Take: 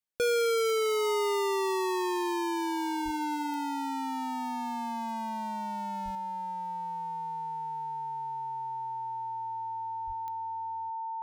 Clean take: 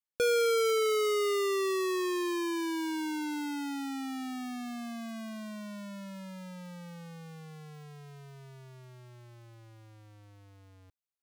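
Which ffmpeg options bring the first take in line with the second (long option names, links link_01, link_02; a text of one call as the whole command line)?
ffmpeg -i in.wav -filter_complex "[0:a]adeclick=threshold=4,bandreject=frequency=900:width=30,asplit=3[link_01][link_02][link_03];[link_01]afade=type=out:start_time=3.04:duration=0.02[link_04];[link_02]highpass=frequency=140:width=0.5412,highpass=frequency=140:width=1.3066,afade=type=in:start_time=3.04:duration=0.02,afade=type=out:start_time=3.16:duration=0.02[link_05];[link_03]afade=type=in:start_time=3.16:duration=0.02[link_06];[link_04][link_05][link_06]amix=inputs=3:normalize=0,asplit=3[link_07][link_08][link_09];[link_07]afade=type=out:start_time=6.04:duration=0.02[link_10];[link_08]highpass=frequency=140:width=0.5412,highpass=frequency=140:width=1.3066,afade=type=in:start_time=6.04:duration=0.02,afade=type=out:start_time=6.16:duration=0.02[link_11];[link_09]afade=type=in:start_time=6.16:duration=0.02[link_12];[link_10][link_11][link_12]amix=inputs=3:normalize=0,asplit=3[link_13][link_14][link_15];[link_13]afade=type=out:start_time=10.06:duration=0.02[link_16];[link_14]highpass=frequency=140:width=0.5412,highpass=frequency=140:width=1.3066,afade=type=in:start_time=10.06:duration=0.02,afade=type=out:start_time=10.18:duration=0.02[link_17];[link_15]afade=type=in:start_time=10.18:duration=0.02[link_18];[link_16][link_17][link_18]amix=inputs=3:normalize=0,asetnsamples=nb_out_samples=441:pad=0,asendcmd='6.15 volume volume 6.5dB',volume=0dB" out.wav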